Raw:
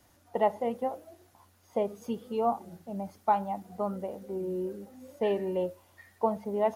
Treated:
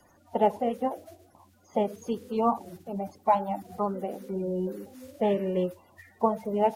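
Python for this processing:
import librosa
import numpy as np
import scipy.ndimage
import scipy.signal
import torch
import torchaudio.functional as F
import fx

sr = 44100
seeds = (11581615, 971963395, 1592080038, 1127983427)

y = fx.spec_quant(x, sr, step_db=30)
y = y * librosa.db_to_amplitude(3.5)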